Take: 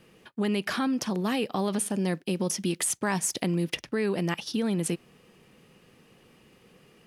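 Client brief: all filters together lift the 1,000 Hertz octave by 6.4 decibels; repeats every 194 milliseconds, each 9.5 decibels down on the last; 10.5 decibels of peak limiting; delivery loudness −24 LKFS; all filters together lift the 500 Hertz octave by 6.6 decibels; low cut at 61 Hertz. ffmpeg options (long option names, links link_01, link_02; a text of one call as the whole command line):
ffmpeg -i in.wav -af "highpass=61,equalizer=frequency=500:width_type=o:gain=7.5,equalizer=frequency=1000:width_type=o:gain=5.5,alimiter=limit=-19dB:level=0:latency=1,aecho=1:1:194|388|582|776:0.335|0.111|0.0365|0.012,volume=5dB" out.wav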